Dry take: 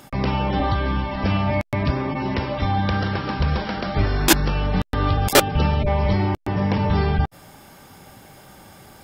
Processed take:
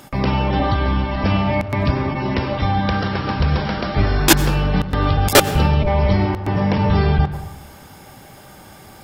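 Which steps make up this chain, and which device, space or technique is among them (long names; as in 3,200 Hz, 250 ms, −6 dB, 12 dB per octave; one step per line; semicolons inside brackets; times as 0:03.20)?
saturated reverb return (on a send at −9 dB: convolution reverb RT60 0.95 s, pre-delay 87 ms + soft clipping −16 dBFS, distortion −12 dB)
on the sum: level +3 dB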